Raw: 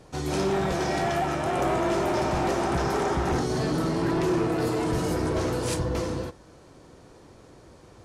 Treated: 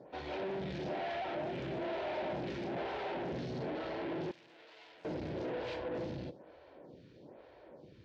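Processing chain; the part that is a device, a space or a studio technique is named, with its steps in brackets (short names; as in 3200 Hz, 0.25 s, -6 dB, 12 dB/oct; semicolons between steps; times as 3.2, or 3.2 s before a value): vibe pedal into a guitar amplifier (photocell phaser 1.1 Hz; tube stage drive 37 dB, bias 0.5; speaker cabinet 86–3900 Hz, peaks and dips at 96 Hz -5 dB, 580 Hz +6 dB, 1200 Hz -10 dB); 4.31–5.05 pre-emphasis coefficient 0.97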